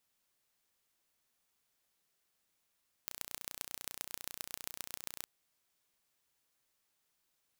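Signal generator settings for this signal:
impulse train 30.1 per second, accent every 4, −11 dBFS 2.18 s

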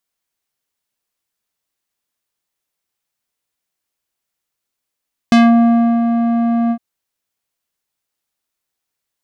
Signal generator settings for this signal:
subtractive voice square A#3 12 dB per octave, low-pass 810 Hz, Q 0.84, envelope 3 octaves, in 0.20 s, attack 1.2 ms, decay 0.69 s, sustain −7 dB, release 0.07 s, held 1.39 s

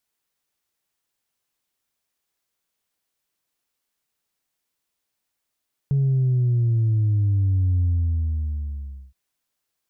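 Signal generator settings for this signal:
bass drop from 140 Hz, over 3.22 s, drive 0.5 dB, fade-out 1.32 s, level −17 dB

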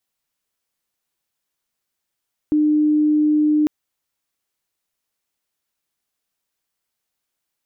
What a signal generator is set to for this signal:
tone sine 302 Hz −13 dBFS 1.15 s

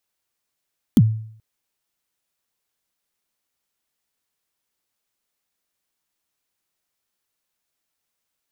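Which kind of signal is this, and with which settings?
synth kick length 0.43 s, from 280 Hz, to 110 Hz, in 45 ms, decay 0.60 s, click on, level −6 dB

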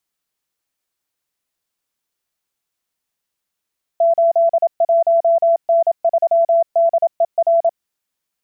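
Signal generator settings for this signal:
Morse code "81N3DER" 27 words per minute 671 Hz −10 dBFS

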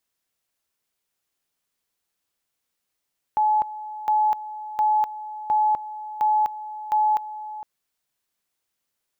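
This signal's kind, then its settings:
tone at two levels in turn 854 Hz −16.5 dBFS, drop 15 dB, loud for 0.25 s, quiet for 0.46 s, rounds 6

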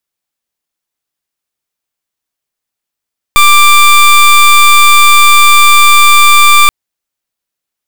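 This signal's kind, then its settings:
pulse wave 1,180 Hz, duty 21% −3.5 dBFS 3.33 s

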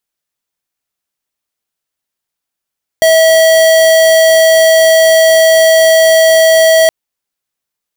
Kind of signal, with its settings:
tone square 647 Hz −6.5 dBFS 3.87 s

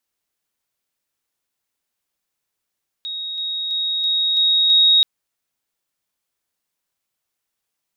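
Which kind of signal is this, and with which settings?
level staircase 3,770 Hz −25 dBFS, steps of 3 dB, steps 6, 0.33 s 0.00 s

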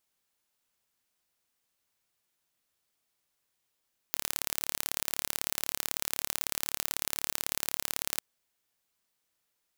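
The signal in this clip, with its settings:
impulse train 36.1 per second, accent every 2, −2 dBFS 4.06 s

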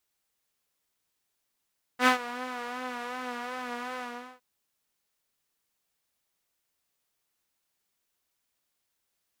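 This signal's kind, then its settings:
subtractive patch with vibrato B3, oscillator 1 saw, sub −30 dB, noise −9 dB, filter bandpass, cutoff 1,100 Hz, Q 1, filter envelope 0.5 octaves, attack 77 ms, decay 0.11 s, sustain −18 dB, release 0.41 s, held 2.00 s, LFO 2.7 Hz, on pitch 49 cents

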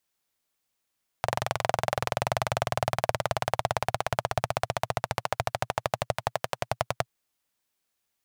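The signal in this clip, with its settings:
pulse-train model of a single-cylinder engine, changing speed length 5.82 s, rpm 2,700, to 1,200, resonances 120/670 Hz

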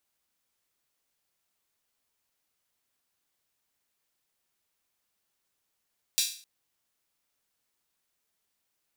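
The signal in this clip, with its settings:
open synth hi-hat length 0.26 s, high-pass 3,800 Hz, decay 0.44 s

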